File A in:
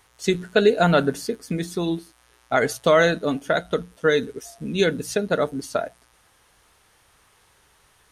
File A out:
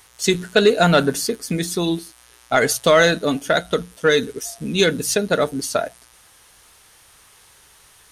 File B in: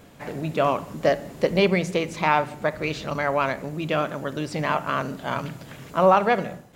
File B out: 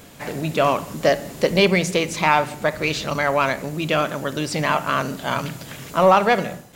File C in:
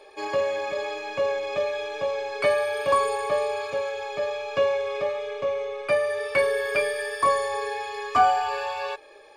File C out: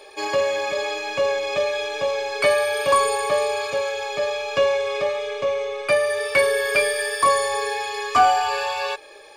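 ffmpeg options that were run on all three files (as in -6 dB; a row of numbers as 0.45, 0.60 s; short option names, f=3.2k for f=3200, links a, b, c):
-filter_complex "[0:a]highshelf=f=2.9k:g=9,asplit=2[a][b];[b]asoftclip=type=tanh:threshold=-17dB,volume=-6dB[c];[a][c]amix=inputs=2:normalize=0"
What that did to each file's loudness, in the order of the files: +3.5, +3.5, +4.0 LU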